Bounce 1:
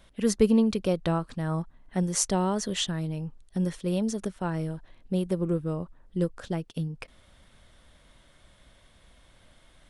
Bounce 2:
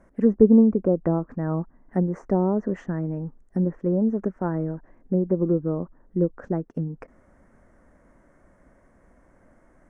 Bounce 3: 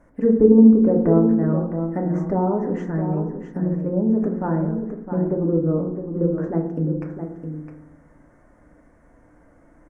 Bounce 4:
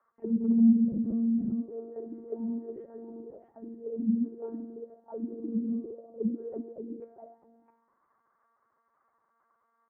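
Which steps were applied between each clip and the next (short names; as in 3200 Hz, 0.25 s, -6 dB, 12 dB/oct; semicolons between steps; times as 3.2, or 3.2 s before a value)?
low shelf 470 Hz +3.5 dB; treble ducked by the level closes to 820 Hz, closed at -20 dBFS; EQ curve 120 Hz 0 dB, 260 Hz +11 dB, 1900 Hz +4 dB, 3600 Hz -29 dB, 6200 Hz -3 dB, 12000 Hz -10 dB; gain -5 dB
echo 0.661 s -8.5 dB; FDN reverb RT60 0.84 s, low-frequency decay 1.45×, high-frequency decay 0.3×, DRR 1.5 dB
monotone LPC vocoder at 8 kHz 230 Hz; soft clip -8 dBFS, distortion -16 dB; auto-wah 210–1200 Hz, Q 7, down, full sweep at -15.5 dBFS; gain -2.5 dB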